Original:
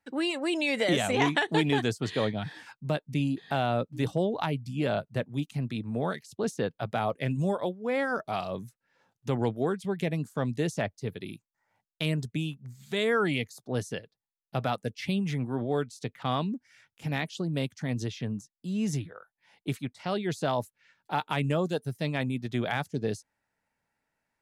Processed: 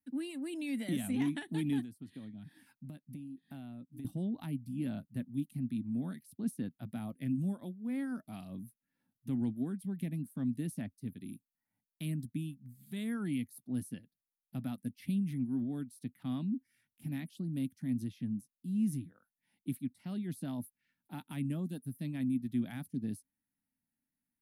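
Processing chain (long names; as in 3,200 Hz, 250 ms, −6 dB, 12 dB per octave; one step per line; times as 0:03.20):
drawn EQ curve 140 Hz 0 dB, 260 Hz +10 dB, 440 Hz −16 dB, 660 Hz −13 dB, 1,200 Hz −14 dB, 1,800 Hz −9 dB, 4,300 Hz −9 dB, 7,100 Hz −12 dB, 10,000 Hz +10 dB
0:01.81–0:04.05: downward compressor 10 to 1, threshold −35 dBFS, peak gain reduction 15.5 dB
level −8.5 dB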